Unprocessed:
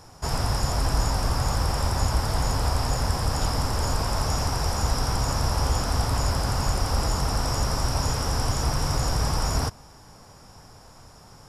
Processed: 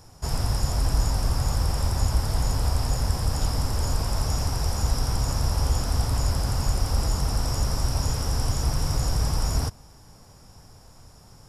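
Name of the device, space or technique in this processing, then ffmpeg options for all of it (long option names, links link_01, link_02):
smiley-face EQ: -af "lowshelf=frequency=140:gain=6,equalizer=frequency=1200:width_type=o:width=1.7:gain=-3,highshelf=frequency=9200:gain=6,volume=-3.5dB"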